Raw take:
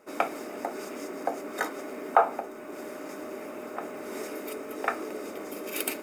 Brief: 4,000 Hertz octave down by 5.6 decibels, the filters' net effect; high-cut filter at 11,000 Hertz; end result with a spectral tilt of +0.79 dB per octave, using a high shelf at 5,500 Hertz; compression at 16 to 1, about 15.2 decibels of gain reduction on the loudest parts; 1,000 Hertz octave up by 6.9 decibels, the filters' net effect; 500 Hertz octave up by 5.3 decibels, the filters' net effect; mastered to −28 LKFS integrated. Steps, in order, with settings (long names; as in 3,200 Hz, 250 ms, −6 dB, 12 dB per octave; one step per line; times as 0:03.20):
low-pass filter 11,000 Hz
parametric band 500 Hz +4 dB
parametric band 1,000 Hz +8.5 dB
parametric band 4,000 Hz −6.5 dB
high-shelf EQ 5,500 Hz −4.5 dB
downward compressor 16 to 1, threshold −28 dBFS
level +7 dB